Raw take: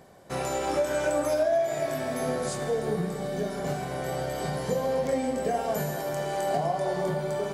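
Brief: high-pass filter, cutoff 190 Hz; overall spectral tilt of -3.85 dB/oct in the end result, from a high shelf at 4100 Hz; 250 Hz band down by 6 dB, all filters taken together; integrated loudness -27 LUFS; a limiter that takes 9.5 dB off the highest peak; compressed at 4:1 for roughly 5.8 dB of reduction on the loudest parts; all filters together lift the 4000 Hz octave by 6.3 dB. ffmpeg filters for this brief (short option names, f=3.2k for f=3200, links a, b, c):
-af "highpass=190,equalizer=f=250:t=o:g=-6,equalizer=f=4k:t=o:g=6,highshelf=f=4.1k:g=3.5,acompressor=threshold=-28dB:ratio=4,volume=6.5dB,alimiter=limit=-18dB:level=0:latency=1"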